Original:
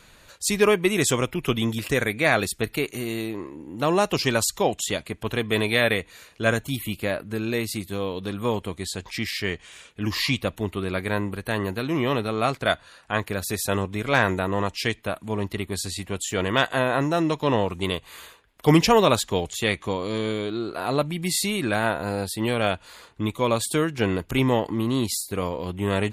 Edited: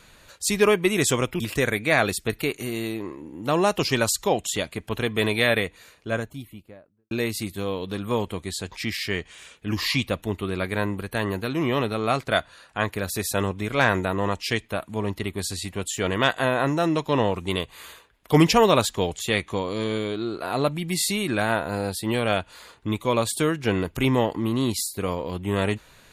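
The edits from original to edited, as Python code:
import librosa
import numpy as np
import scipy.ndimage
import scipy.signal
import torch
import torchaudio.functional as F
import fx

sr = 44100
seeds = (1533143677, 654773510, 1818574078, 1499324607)

y = fx.studio_fade_out(x, sr, start_s=5.78, length_s=1.67)
y = fx.edit(y, sr, fx.cut(start_s=1.4, length_s=0.34), tone=tone)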